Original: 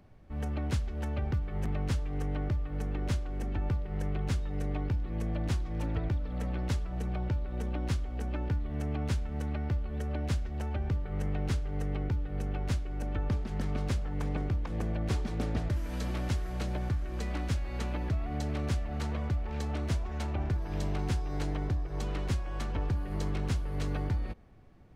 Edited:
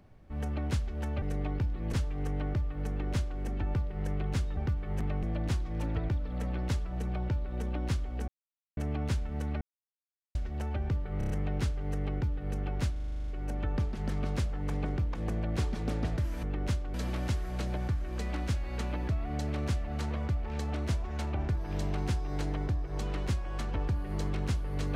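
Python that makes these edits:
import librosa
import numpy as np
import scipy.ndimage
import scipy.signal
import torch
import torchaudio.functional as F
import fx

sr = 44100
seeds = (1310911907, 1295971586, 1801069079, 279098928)

y = fx.edit(x, sr, fx.swap(start_s=1.22, length_s=0.66, other_s=4.52, other_length_s=0.71),
    fx.duplicate(start_s=2.84, length_s=0.51, to_s=15.95),
    fx.silence(start_s=8.28, length_s=0.49),
    fx.silence(start_s=9.61, length_s=0.74),
    fx.stutter(start_s=11.18, slice_s=0.03, count=5),
    fx.stutter(start_s=12.8, slice_s=0.04, count=10), tone=tone)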